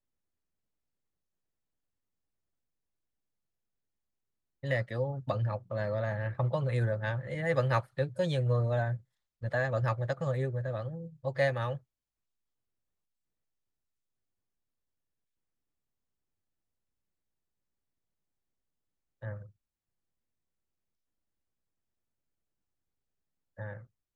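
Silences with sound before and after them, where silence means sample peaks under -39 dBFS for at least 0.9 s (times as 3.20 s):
11.77–19.23 s
19.42–23.59 s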